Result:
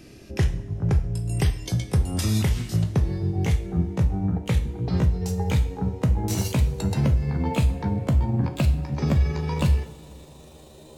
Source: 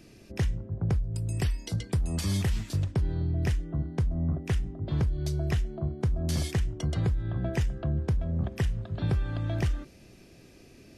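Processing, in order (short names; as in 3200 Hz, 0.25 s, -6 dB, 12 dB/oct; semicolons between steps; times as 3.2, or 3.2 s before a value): gliding pitch shift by +7.5 st starting unshifted; two-slope reverb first 0.48 s, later 3 s, from -18 dB, DRR 7 dB; gain +5.5 dB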